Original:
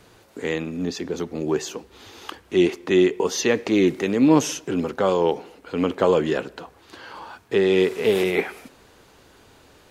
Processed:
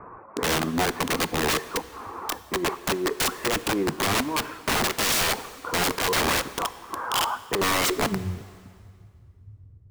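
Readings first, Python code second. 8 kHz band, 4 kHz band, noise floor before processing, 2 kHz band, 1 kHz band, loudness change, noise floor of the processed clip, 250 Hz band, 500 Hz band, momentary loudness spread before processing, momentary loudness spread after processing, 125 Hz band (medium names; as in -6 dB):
+5.5 dB, +6.0 dB, -54 dBFS, +3.5 dB, +4.0 dB, -3.5 dB, -51 dBFS, -8.5 dB, -8.5 dB, 19 LU, 10 LU, -2.0 dB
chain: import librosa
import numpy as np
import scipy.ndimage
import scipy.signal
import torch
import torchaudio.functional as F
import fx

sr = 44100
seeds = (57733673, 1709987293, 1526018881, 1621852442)

y = fx.dereverb_blind(x, sr, rt60_s=0.52)
y = scipy.signal.sosfilt(scipy.signal.butter(16, 2600.0, 'lowpass', fs=sr, output='sos'), y)
y = fx.low_shelf(y, sr, hz=150.0, db=-2.0)
y = fx.over_compress(y, sr, threshold_db=-22.0, ratio=-0.5)
y = fx.filter_sweep_lowpass(y, sr, from_hz=1100.0, to_hz=100.0, start_s=7.63, end_s=8.25, q=6.1)
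y = fx.cheby_harmonics(y, sr, harmonics=(4,), levels_db=(-33,), full_scale_db=-3.5)
y = (np.mod(10.0 ** (20.5 / 20.0) * y + 1.0, 2.0) - 1.0) / 10.0 ** (20.5 / 20.0)
y = fx.rev_plate(y, sr, seeds[0], rt60_s=2.2, hf_ratio=0.9, predelay_ms=0, drr_db=14.5)
y = y * librosa.db_to_amplitude(2.5)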